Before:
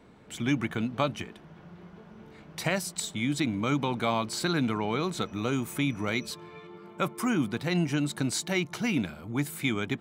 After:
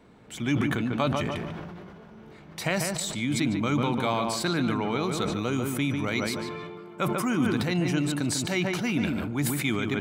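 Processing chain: filtered feedback delay 146 ms, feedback 29%, low-pass 2.2 kHz, level -6 dB; decay stretcher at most 25 dB/s

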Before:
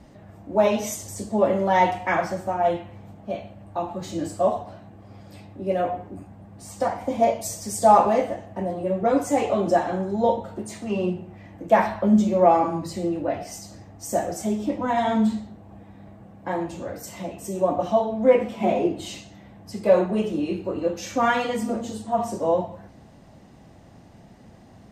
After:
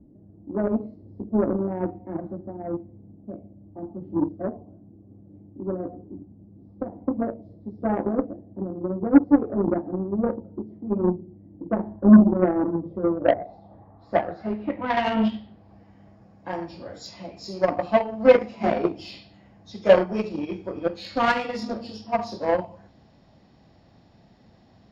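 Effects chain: knee-point frequency compression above 2 kHz 1.5:1; low-pass sweep 320 Hz -> 5.8 kHz, 12.54–15.96 s; Chebyshev shaper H 7 -21 dB, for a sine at -4.5 dBFS; trim +2 dB

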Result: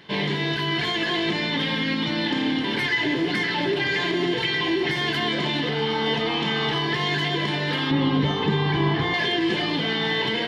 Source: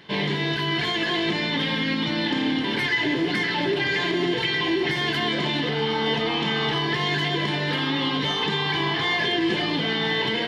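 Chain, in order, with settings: 7.91–9.14 s: tilt EQ -3 dB/octave

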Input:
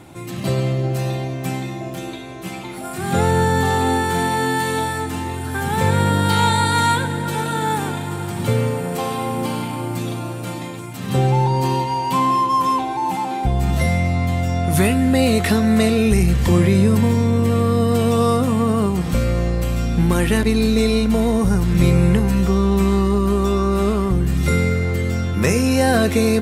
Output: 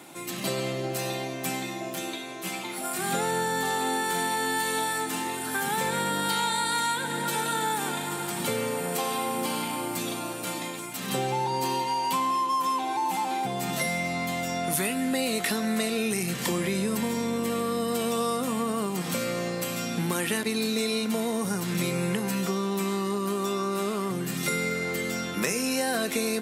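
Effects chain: high-pass 160 Hz 24 dB/octave; tilt EQ +2 dB/octave; compression 4:1, threshold -22 dBFS, peak gain reduction 8.5 dB; trim -2.5 dB

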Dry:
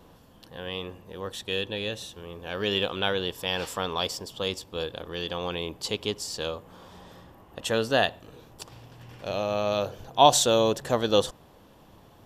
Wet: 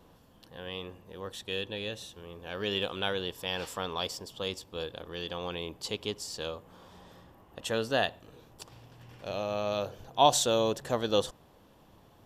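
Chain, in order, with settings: 2.81–3.22 s: peaking EQ 9.1 kHz +5.5 dB; trim -5 dB

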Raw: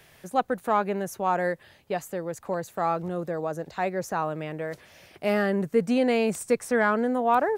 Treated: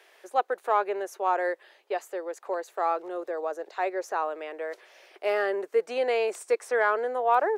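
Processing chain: elliptic high-pass 370 Hz, stop band 80 dB; treble shelf 8.5 kHz -11.5 dB

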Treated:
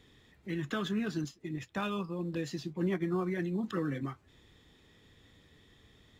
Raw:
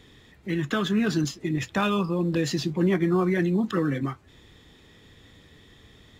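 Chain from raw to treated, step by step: 0.94–3.63 s: upward expansion 1.5:1, over -39 dBFS; trim -8.5 dB

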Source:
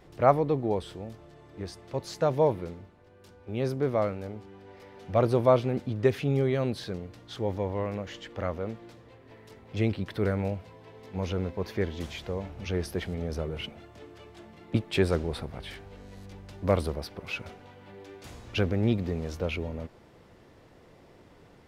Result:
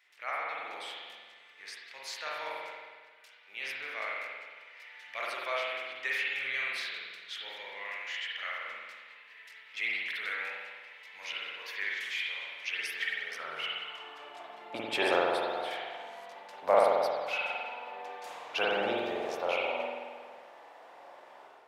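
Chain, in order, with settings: high-pass sweep 2.1 kHz -> 760 Hz, 12.92–14.26 s; spring tank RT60 1.5 s, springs 45 ms, chirp 50 ms, DRR -5 dB; level rider gain up to 6 dB; trim -7.5 dB

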